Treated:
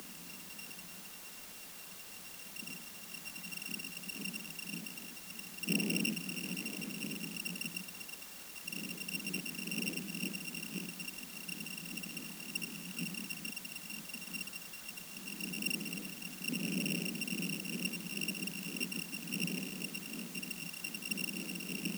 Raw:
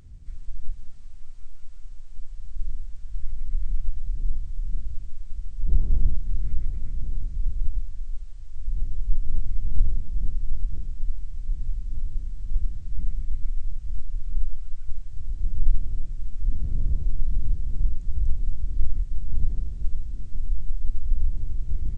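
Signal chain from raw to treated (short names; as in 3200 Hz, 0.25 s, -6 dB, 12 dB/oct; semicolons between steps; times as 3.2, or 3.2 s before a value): sample sorter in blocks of 16 samples; steep high-pass 170 Hz 96 dB/oct; requantised 10-bit, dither triangular; gain +9.5 dB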